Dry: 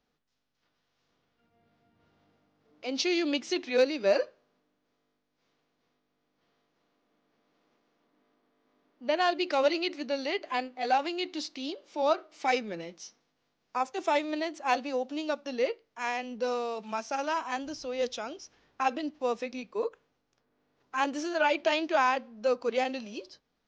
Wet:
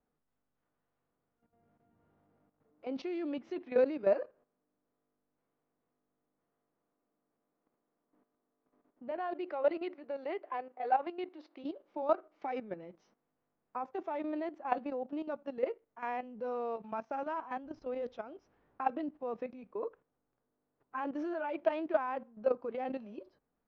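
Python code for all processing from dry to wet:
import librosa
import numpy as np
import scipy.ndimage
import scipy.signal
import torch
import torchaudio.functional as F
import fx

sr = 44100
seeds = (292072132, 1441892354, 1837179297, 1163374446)

y = fx.chain(x, sr, fx.highpass(hz=330.0, slope=24),
    fx.high_shelf(hz=6600.0, db=-12.0), at=(9.11, 11.64))
y = scipy.signal.sosfilt(scipy.signal.butter(2, 1300.0, 'lowpass', fs=sr, output='sos'), y)
y = fx.level_steps(y, sr, step_db=12)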